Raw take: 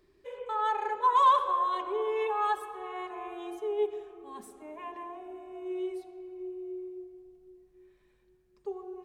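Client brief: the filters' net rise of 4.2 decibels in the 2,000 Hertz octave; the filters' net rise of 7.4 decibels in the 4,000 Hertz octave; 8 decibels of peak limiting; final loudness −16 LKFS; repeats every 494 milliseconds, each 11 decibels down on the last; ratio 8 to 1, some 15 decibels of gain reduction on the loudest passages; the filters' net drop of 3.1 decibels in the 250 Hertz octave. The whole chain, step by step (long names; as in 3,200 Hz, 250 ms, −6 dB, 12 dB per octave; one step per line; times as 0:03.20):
parametric band 250 Hz −7 dB
parametric band 2,000 Hz +3.5 dB
parametric band 4,000 Hz +8 dB
downward compressor 8 to 1, threshold −34 dBFS
brickwall limiter −34.5 dBFS
repeating echo 494 ms, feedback 28%, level −11 dB
level +26.5 dB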